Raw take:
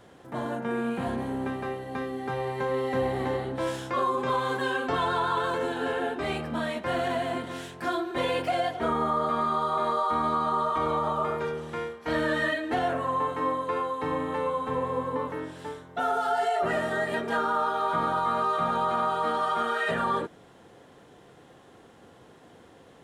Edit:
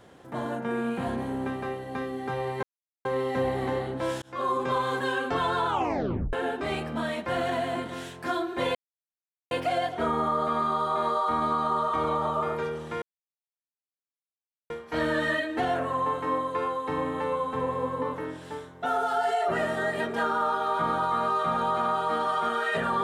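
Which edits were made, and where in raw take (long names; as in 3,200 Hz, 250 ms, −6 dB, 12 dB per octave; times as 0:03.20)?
0:02.63: splice in silence 0.42 s
0:03.80–0:04.09: fade in
0:05.24: tape stop 0.67 s
0:08.33: splice in silence 0.76 s
0:11.84: splice in silence 1.68 s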